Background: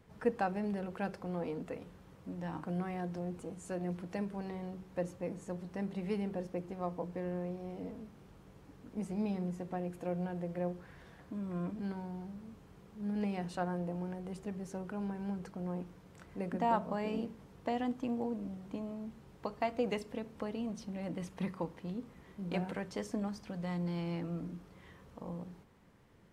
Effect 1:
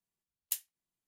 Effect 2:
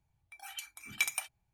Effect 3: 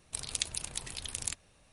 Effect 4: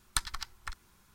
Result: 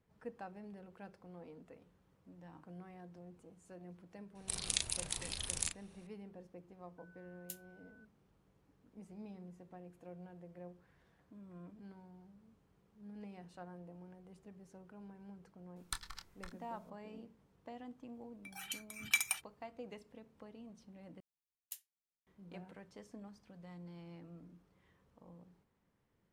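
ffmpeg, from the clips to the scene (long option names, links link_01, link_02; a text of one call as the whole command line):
ffmpeg -i bed.wav -i cue0.wav -i cue1.wav -i cue2.wav -i cue3.wav -filter_complex "[1:a]asplit=2[link_01][link_02];[0:a]volume=-15dB[link_03];[3:a]asplit=2[link_04][link_05];[link_05]adelay=36,volume=-5dB[link_06];[link_04][link_06]amix=inputs=2:normalize=0[link_07];[link_01]aeval=exprs='val(0)+0.00355*sin(2*PI*1500*n/s)':channel_layout=same[link_08];[4:a]asplit=2[link_09][link_10];[link_10]adelay=26,volume=-9dB[link_11];[link_09][link_11]amix=inputs=2:normalize=0[link_12];[2:a]equalizer=frequency=490:width_type=o:width=0.77:gain=-14[link_13];[link_03]asplit=2[link_14][link_15];[link_14]atrim=end=21.204[link_16];[link_02]atrim=end=1.07,asetpts=PTS-STARTPTS,volume=-13.5dB[link_17];[link_15]atrim=start=22.266[link_18];[link_07]atrim=end=1.72,asetpts=PTS-STARTPTS,volume=-2.5dB,afade=type=in:duration=0.004:curve=hsin,afade=type=out:start_time=1.716:duration=0.004:curve=hsin,adelay=4350[link_19];[link_08]atrim=end=1.07,asetpts=PTS-STARTPTS,volume=-13.5dB,afade=type=in:duration=0.004:curve=hsin,afade=type=out:start_time=1.066:duration=0.004:curve=hsin,adelay=307818S[link_20];[link_12]atrim=end=1.14,asetpts=PTS-STARTPTS,volume=-11dB,afade=type=in:duration=0.004:curve=hsin,afade=type=out:start_time=1.136:duration=0.004:curve=hsin,adelay=15760[link_21];[link_13]atrim=end=1.53,asetpts=PTS-STARTPTS,volume=-0.5dB,afade=type=in:duration=0.004:curve=hsin,afade=type=out:start_time=1.526:duration=0.004:curve=hsin,adelay=18130[link_22];[link_16][link_17]acrossfade=duration=0.004:curve1=hsin:curve2=hsin[link_23];[link_23][link_18]acrossfade=duration=0.004:curve1=hsin:curve2=hsin[link_24];[link_24][link_19][link_20][link_21][link_22]amix=inputs=5:normalize=0" out.wav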